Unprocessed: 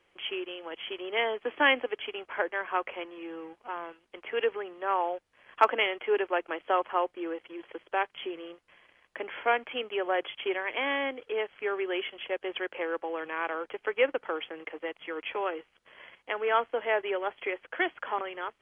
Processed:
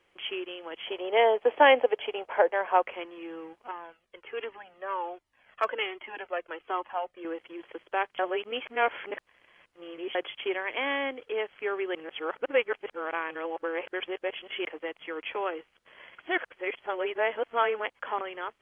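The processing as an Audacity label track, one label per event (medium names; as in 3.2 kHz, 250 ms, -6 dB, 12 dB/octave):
0.850000	2.820000	high-order bell 640 Hz +9.5 dB 1.3 oct
3.710000	7.250000	Shepard-style flanger falling 1.3 Hz
8.190000	10.150000	reverse
11.950000	14.650000	reverse
16.180000	17.990000	reverse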